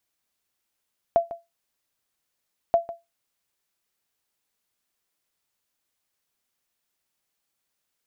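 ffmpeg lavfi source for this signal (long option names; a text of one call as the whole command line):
ffmpeg -f lavfi -i "aevalsrc='0.299*(sin(2*PI*678*mod(t,1.58))*exp(-6.91*mod(t,1.58)/0.2)+0.168*sin(2*PI*678*max(mod(t,1.58)-0.15,0))*exp(-6.91*max(mod(t,1.58)-0.15,0)/0.2))':duration=3.16:sample_rate=44100" out.wav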